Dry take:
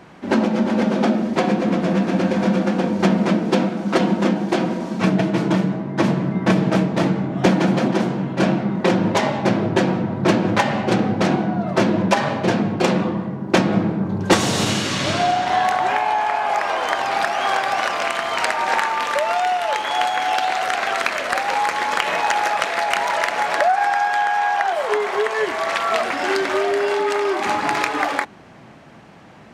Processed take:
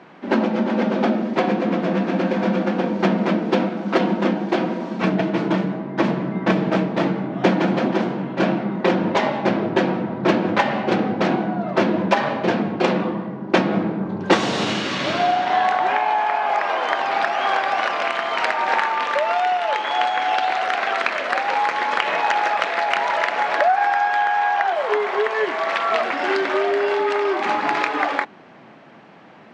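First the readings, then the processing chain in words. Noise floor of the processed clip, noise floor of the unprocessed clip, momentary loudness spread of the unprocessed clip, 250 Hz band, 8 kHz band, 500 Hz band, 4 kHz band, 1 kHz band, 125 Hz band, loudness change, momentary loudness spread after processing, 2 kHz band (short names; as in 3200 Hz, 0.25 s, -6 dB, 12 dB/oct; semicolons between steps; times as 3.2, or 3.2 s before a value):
-45 dBFS, -43 dBFS, 3 LU, -2.0 dB, -10.5 dB, 0.0 dB, -2.0 dB, 0.0 dB, -4.5 dB, -1.0 dB, 3 LU, 0.0 dB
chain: BPF 200–3900 Hz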